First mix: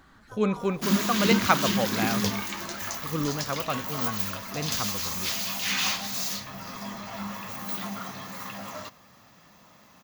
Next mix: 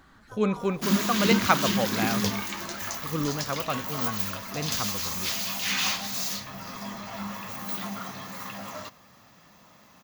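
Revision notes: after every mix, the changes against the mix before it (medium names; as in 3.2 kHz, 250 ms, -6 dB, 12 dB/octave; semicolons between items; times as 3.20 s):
no change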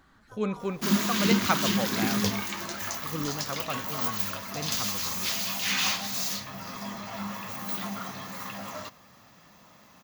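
speech -4.5 dB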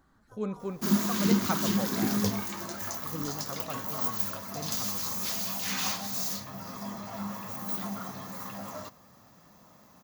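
speech -3.5 dB; master: add peaking EQ 2.7 kHz -9.5 dB 1.7 oct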